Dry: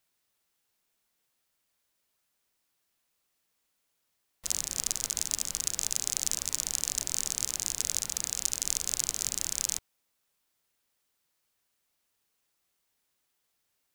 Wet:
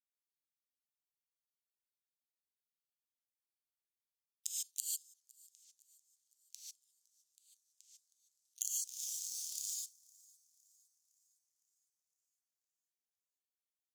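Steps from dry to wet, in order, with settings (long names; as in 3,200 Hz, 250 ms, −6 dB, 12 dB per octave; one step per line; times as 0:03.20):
time-frequency cells dropped at random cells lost 32%
double-tracking delay 30 ms −3.5 dB
gate with flip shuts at −13 dBFS, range −28 dB
0:08.79–0:09.72: leveller curve on the samples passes 5
inverse Chebyshev high-pass filter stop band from 1,600 Hz, stop band 40 dB
parametric band 13,000 Hz +4 dB 0.39 octaves
downward expander −37 dBFS
reverb whose tail is shaped and stops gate 170 ms rising, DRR −6 dB
downward compressor 4 to 1, threshold −41 dBFS, peak gain reduction 13 dB
delay with a high-pass on its return 510 ms, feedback 50%, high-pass 5,400 Hz, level −23 dB
level +4 dB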